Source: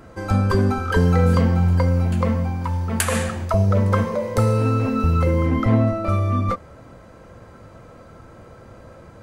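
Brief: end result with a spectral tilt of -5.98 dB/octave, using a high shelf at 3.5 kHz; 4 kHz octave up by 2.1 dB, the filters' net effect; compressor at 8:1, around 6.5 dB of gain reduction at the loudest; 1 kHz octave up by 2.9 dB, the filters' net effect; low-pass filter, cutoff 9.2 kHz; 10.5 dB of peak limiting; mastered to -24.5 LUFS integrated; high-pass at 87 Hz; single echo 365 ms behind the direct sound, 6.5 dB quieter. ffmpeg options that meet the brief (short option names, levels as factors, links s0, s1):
-af "highpass=87,lowpass=9200,equalizer=f=1000:t=o:g=4,highshelf=f=3500:g=-5,equalizer=f=4000:t=o:g=6,acompressor=threshold=0.112:ratio=8,alimiter=limit=0.119:level=0:latency=1,aecho=1:1:365:0.473,volume=1.19"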